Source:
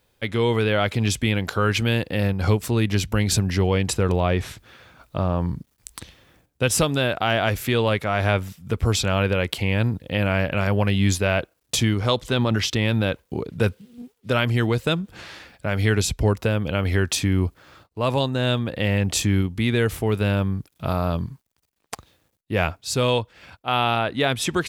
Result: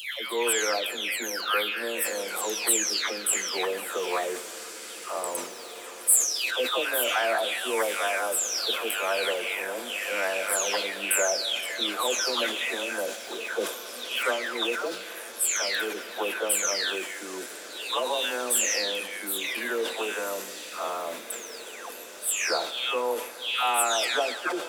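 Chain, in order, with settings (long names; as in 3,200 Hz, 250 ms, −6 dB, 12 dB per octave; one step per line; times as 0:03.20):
every frequency bin delayed by itself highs early, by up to 627 ms
Bessel high-pass filter 530 Hz, order 8
high-shelf EQ 6,900 Hz +11.5 dB
surface crackle 330 per second −44 dBFS
in parallel at −9 dB: soft clipping −14.5 dBFS, distortion −20 dB
on the sum: feedback delay with all-pass diffusion 1,812 ms, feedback 59%, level −14 dB
on a send at −13 dB: convolution reverb RT60 2.9 s, pre-delay 6 ms
on the sum: level that may fall only so fast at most 81 dB per second
level −3.5 dB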